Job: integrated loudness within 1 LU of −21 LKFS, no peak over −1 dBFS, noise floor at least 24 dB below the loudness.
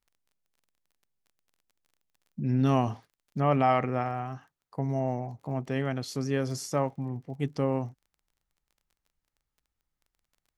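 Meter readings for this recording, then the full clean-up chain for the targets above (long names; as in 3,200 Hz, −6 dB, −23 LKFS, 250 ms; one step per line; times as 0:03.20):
crackle rate 23 per second; integrated loudness −29.5 LKFS; sample peak −12.0 dBFS; target loudness −21.0 LKFS
→ click removal
level +8.5 dB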